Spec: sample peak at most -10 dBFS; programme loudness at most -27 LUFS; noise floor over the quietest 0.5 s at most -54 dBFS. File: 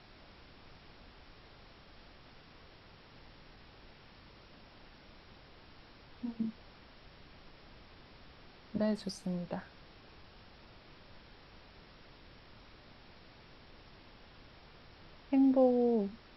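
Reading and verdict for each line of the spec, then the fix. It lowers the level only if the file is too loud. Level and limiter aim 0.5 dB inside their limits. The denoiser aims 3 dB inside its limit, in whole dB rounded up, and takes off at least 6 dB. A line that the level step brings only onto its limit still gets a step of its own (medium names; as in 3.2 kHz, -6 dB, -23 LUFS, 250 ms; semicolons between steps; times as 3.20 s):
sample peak -16.5 dBFS: pass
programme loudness -33.0 LUFS: pass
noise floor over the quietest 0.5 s -57 dBFS: pass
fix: none needed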